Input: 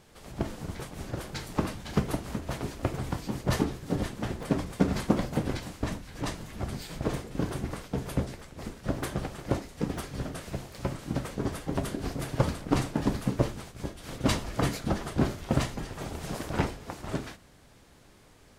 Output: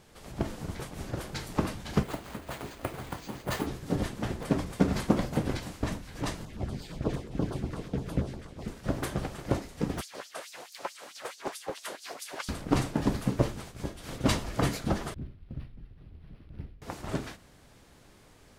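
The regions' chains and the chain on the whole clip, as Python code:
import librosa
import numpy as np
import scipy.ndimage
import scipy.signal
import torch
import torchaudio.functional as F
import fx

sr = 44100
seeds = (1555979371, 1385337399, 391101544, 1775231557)

y = fx.chain(x, sr, fx.low_shelf(hz=400.0, db=-9.5),
    fx.resample_bad(factor=4, down='filtered', up='hold'), at=(2.03, 3.67))
y = fx.chain(y, sr, fx.high_shelf(hz=6000.0, db=-12.0),
    fx.filter_lfo_notch(shape='saw_down', hz=8.5, low_hz=640.0, high_hz=2600.0, q=0.98),
    fx.echo_single(ms=726, db=-11.0), at=(6.45, 8.68))
y = fx.chain(y, sr, fx.filter_lfo_highpass(shape='sine', hz=4.6, low_hz=480.0, high_hz=5600.0, q=1.8),
    fx.doppler_dist(depth_ms=0.44), at=(10.01, 12.49))
y = fx.chain(y, sr, fx.tone_stack(knobs='10-0-1'),
    fx.resample_linear(factor=6), at=(15.14, 16.82))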